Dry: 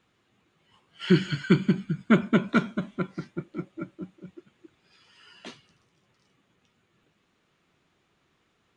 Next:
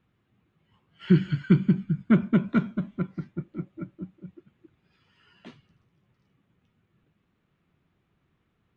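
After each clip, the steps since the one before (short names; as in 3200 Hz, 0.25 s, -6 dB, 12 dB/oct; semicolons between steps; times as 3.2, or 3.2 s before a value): tone controls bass +11 dB, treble -12 dB; gain -6 dB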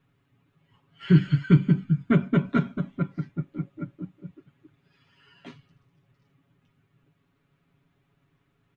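comb 7.2 ms, depth 90%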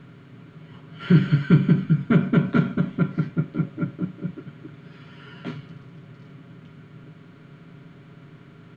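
per-bin compression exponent 0.6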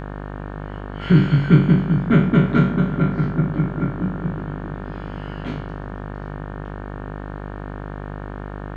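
spectral trails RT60 0.49 s; analogue delay 0.377 s, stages 4096, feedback 73%, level -16 dB; buzz 50 Hz, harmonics 36, -33 dBFS -4 dB/oct; gain +1.5 dB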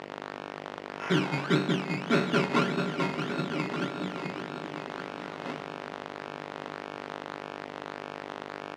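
decimation with a swept rate 15×, swing 60% 1.7 Hz; BPF 380–3400 Hz; echo 1.173 s -12 dB; gain -2 dB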